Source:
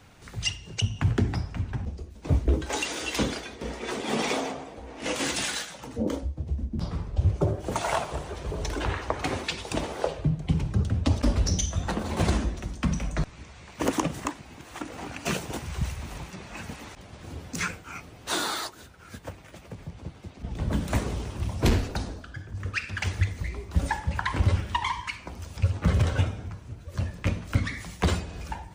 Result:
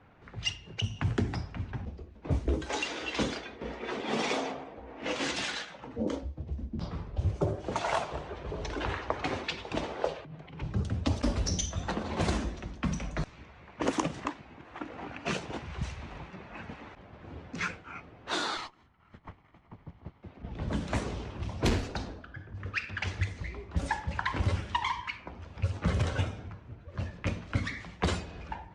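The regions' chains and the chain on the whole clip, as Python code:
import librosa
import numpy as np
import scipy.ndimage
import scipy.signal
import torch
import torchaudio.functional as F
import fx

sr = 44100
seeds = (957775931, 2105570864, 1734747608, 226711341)

y = fx.chain(x, sr, fx.lowpass(hz=2000.0, slope=6),
    fx.tilt_eq(slope=4.0),
    fx.over_compress(threshold_db=-39.0, ratio=-1.0), at=(10.15, 10.62))
y = fx.chain(y, sr, fx.lower_of_two(delay_ms=0.95),
    fx.upward_expand(threshold_db=-47.0, expansion=1.5), at=(18.57, 20.23))
y = fx.env_lowpass(y, sr, base_hz=1700.0, full_db=-19.5)
y = scipy.signal.sosfilt(scipy.signal.butter(2, 8700.0, 'lowpass', fs=sr, output='sos'), y)
y = fx.low_shelf(y, sr, hz=150.0, db=-5.5)
y = y * librosa.db_to_amplitude(-2.5)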